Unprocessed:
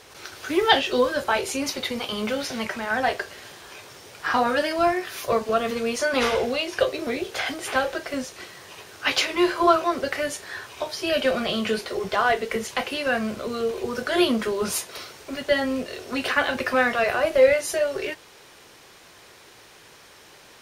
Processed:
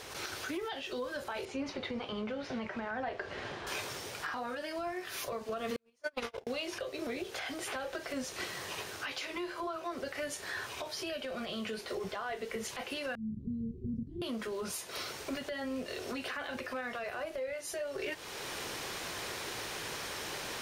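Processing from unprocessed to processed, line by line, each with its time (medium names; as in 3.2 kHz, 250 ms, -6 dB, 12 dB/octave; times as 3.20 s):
1.45–3.67 s: tape spacing loss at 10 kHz 26 dB
5.76–6.47 s: gate -19 dBFS, range -51 dB
13.15–14.22 s: inverse Chebyshev low-pass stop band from 560 Hz, stop band 50 dB
whole clip: compression 5:1, threshold -33 dBFS; peak limiter -28 dBFS; gain riding 0.5 s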